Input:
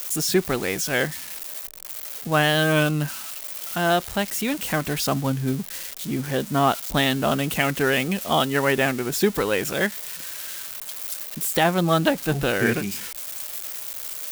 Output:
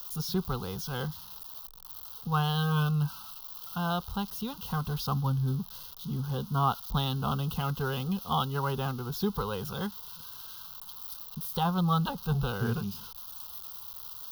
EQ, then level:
high-shelf EQ 2,400 Hz −10.5 dB
phaser with its sweep stopped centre 750 Hz, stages 4
phaser with its sweep stopped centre 2,300 Hz, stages 6
+2.0 dB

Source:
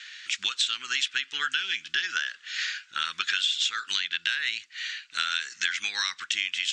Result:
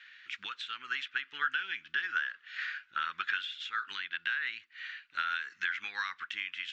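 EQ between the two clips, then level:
low-pass filter 2,100 Hz 12 dB per octave
dynamic equaliser 1,300 Hz, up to +6 dB, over −42 dBFS, Q 0.99
−6.0 dB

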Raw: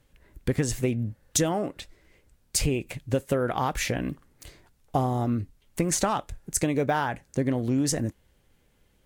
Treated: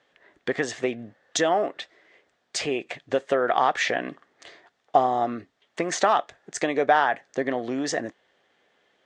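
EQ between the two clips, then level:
high-frequency loss of the air 63 metres
loudspeaker in its box 360–7,400 Hz, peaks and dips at 410 Hz +3 dB, 700 Hz +9 dB, 1,200 Hz +5 dB, 1,800 Hz +9 dB, 3,400 Hz +6 dB
+2.0 dB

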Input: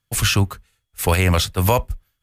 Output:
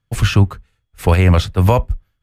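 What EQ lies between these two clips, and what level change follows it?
low-pass filter 2,200 Hz 6 dB per octave
low-shelf EQ 330 Hz +5 dB
+2.0 dB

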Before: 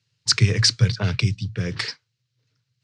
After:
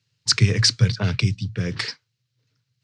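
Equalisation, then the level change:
parametric band 230 Hz +3.5 dB 0.59 octaves
0.0 dB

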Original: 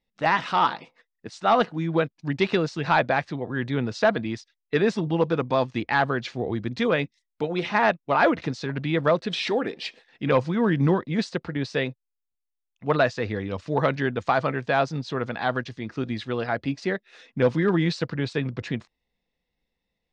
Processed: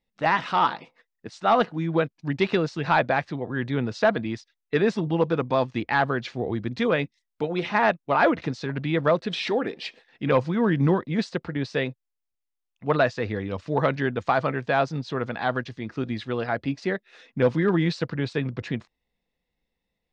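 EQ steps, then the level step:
high-shelf EQ 5,100 Hz −5 dB
0.0 dB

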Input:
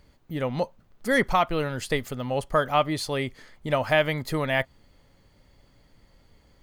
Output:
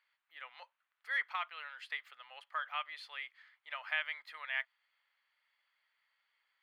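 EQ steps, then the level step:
Bessel high-pass filter 2,100 Hz, order 4
high-frequency loss of the air 490 metres
0.0 dB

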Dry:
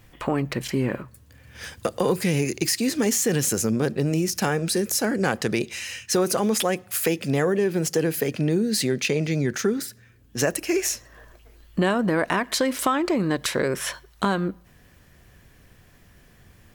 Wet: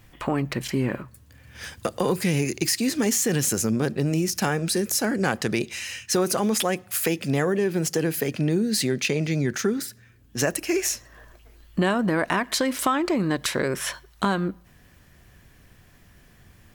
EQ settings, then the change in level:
parametric band 480 Hz −3 dB 0.52 octaves
0.0 dB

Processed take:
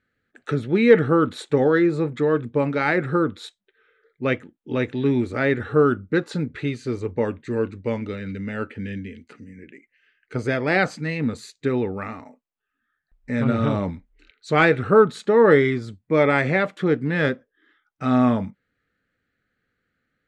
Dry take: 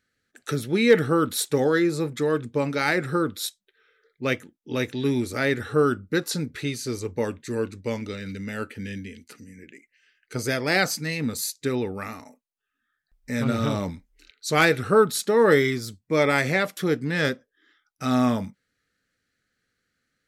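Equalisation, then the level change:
low-pass filter 7,400 Hz 24 dB per octave
high-shelf EQ 4,100 Hz −10.5 dB
parametric band 5,500 Hz −11.5 dB 0.76 octaves
+3.5 dB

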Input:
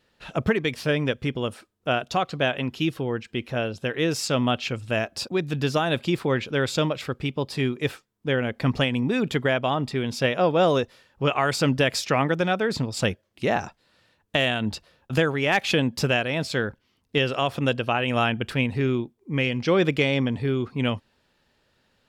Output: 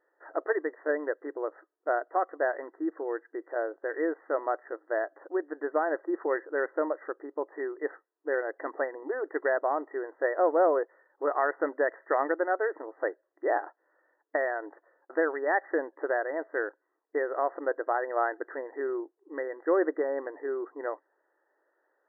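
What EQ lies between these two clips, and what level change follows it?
linear-phase brick-wall band-pass 290–2,000 Hz
parametric band 650 Hz +2.5 dB
−4.5 dB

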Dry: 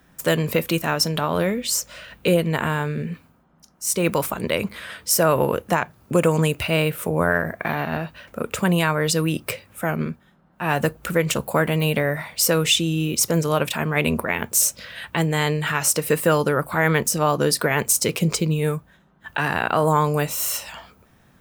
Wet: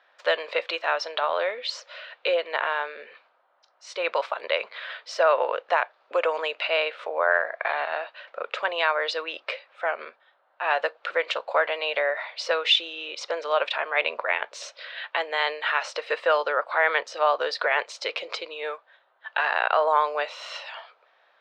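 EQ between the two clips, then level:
elliptic band-pass filter 560–4,100 Hz, stop band 50 dB
0.0 dB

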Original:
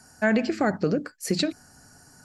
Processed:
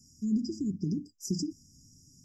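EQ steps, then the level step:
linear-phase brick-wall band-stop 470–4,800 Hz
phaser with its sweep stopped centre 2,300 Hz, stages 8
−1.5 dB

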